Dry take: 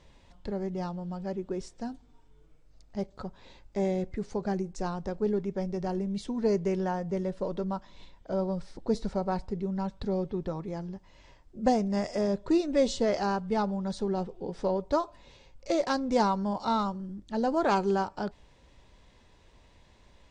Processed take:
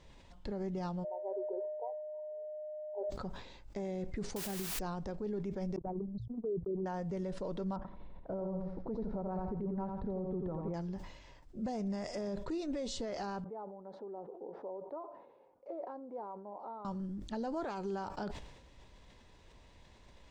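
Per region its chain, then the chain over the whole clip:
1.03–3.09 s: whistle 610 Hz -39 dBFS + brick-wall FIR band-pass 370–1000 Hz + decay stretcher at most 28 dB/s
4.36–4.79 s: distance through air 140 m + word length cut 6-bit, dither triangular
5.76–6.86 s: resonances exaggerated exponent 3 + gate -31 dBFS, range -60 dB + de-hum 57.77 Hz, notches 2
7.76–10.74 s: low-pass 1.1 kHz + feedback delay 86 ms, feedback 36%, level -6 dB
13.44–16.85 s: compression 4:1, threshold -39 dBFS + Butterworth band-pass 570 Hz, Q 0.88
whole clip: compression, threshold -29 dBFS; peak limiter -29 dBFS; decay stretcher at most 61 dB/s; trim -1.5 dB

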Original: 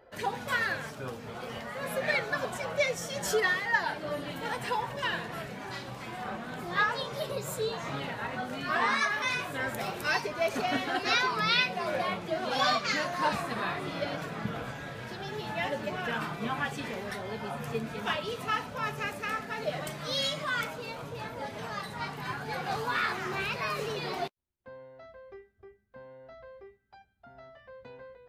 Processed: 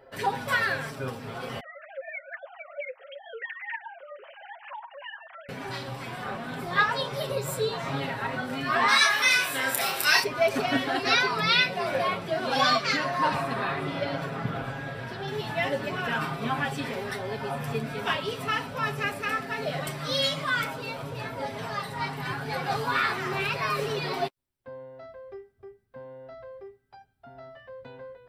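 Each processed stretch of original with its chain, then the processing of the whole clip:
1.60–5.49 s: formants replaced by sine waves + high-pass 420 Hz + compression 2:1, threshold -48 dBFS
8.88–10.24 s: tilt EQ +3.5 dB/octave + doubling 30 ms -4.5 dB
12.96–15.28 s: treble shelf 3.9 kHz -6.5 dB + delay 108 ms -12 dB
whole clip: band-stop 6.6 kHz, Q 7.4; comb 7.4 ms, depth 53%; trim +3 dB

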